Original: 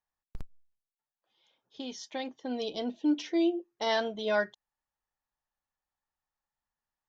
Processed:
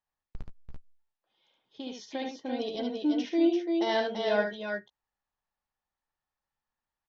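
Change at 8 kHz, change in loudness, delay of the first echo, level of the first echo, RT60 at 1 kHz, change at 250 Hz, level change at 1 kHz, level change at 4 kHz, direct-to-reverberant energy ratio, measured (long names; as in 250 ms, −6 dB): can't be measured, +2.0 dB, 72 ms, −5.0 dB, no reverb audible, +2.5 dB, +1.0 dB, 0.0 dB, no reverb audible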